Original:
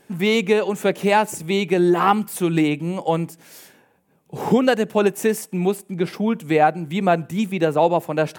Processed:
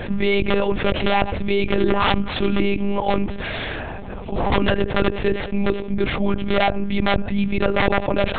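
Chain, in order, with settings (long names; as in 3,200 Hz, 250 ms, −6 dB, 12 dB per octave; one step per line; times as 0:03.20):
wrap-around overflow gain 9 dB
one-pitch LPC vocoder at 8 kHz 200 Hz
envelope flattener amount 70%
level −3.5 dB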